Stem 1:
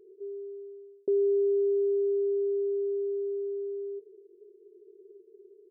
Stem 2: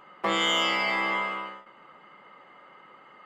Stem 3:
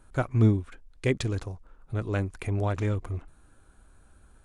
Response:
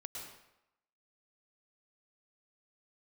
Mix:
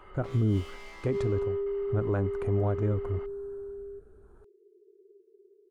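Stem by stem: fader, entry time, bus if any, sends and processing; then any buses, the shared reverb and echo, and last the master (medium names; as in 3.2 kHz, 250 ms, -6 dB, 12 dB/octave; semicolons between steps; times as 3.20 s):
-5.5 dB, 0.00 s, no send, none
-2.0 dB, 0.00 s, no send, hard clipper -30.5 dBFS, distortion -6 dB; peak limiter -35.5 dBFS, peak gain reduction 5 dB; compression 6:1, threshold -46 dBFS, peak gain reduction 8.5 dB
+2.5 dB, 0.00 s, no send, resonant high shelf 1.7 kHz -11.5 dB, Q 1.5; rotary cabinet horn 0.8 Hz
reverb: none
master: treble shelf 5.3 kHz -4.5 dB; peak limiter -19.5 dBFS, peak gain reduction 9 dB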